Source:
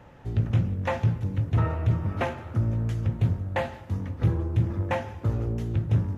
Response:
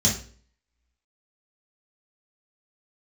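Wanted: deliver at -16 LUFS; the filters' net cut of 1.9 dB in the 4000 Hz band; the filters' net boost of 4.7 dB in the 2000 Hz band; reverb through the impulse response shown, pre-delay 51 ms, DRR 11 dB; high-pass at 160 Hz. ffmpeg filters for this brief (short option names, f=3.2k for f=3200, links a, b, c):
-filter_complex "[0:a]highpass=160,equalizer=f=2k:t=o:g=7,equalizer=f=4k:t=o:g=-7,asplit=2[a][b];[1:a]atrim=start_sample=2205,adelay=51[c];[b][c]afir=irnorm=-1:irlink=0,volume=-23dB[d];[a][d]amix=inputs=2:normalize=0,volume=13dB"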